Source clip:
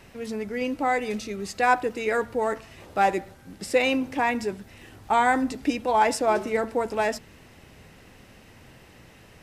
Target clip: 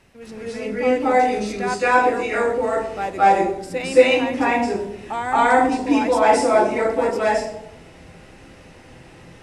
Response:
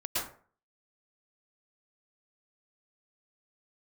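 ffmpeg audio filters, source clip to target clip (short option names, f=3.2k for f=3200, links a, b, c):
-filter_complex "[1:a]atrim=start_sample=2205,asetrate=22050,aresample=44100[a];[0:a][a]afir=irnorm=-1:irlink=0,volume=-5.5dB"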